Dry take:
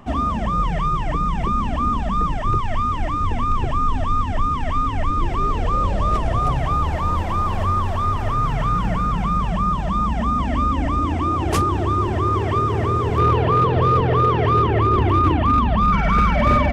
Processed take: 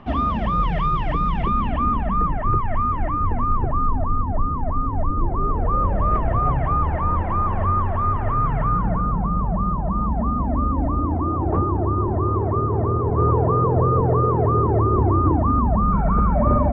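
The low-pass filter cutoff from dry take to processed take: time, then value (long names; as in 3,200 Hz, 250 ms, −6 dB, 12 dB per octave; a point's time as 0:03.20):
low-pass filter 24 dB per octave
0:01.28 4,200 Hz
0:02.29 1,900 Hz
0:03.02 1,900 Hz
0:04.20 1,100 Hz
0:05.33 1,100 Hz
0:06.11 1,900 Hz
0:08.53 1,900 Hz
0:09.22 1,100 Hz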